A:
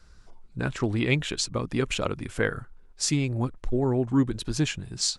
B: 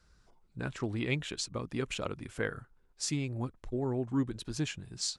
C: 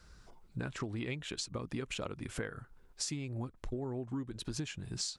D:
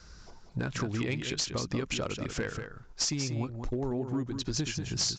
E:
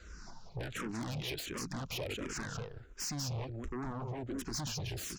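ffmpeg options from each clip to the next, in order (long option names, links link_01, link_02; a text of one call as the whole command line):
ffmpeg -i in.wav -af "highpass=frequency=41:poles=1,volume=-8dB" out.wav
ffmpeg -i in.wav -af "acompressor=threshold=-42dB:ratio=12,volume=7dB" out.wav
ffmpeg -i in.wav -af "aexciter=amount=1.9:drive=3.4:freq=4800,aresample=16000,asoftclip=type=hard:threshold=-30.5dB,aresample=44100,aecho=1:1:189:0.422,volume=6dB" out.wav
ffmpeg -i in.wav -filter_complex "[0:a]asplit=2[link_01][link_02];[link_02]aeval=exprs='0.112*sin(PI/2*5.62*val(0)/0.112)':channel_layout=same,volume=-11dB[link_03];[link_01][link_03]amix=inputs=2:normalize=0,asplit=2[link_04][link_05];[link_05]afreqshift=-1.4[link_06];[link_04][link_06]amix=inputs=2:normalize=1,volume=-7.5dB" out.wav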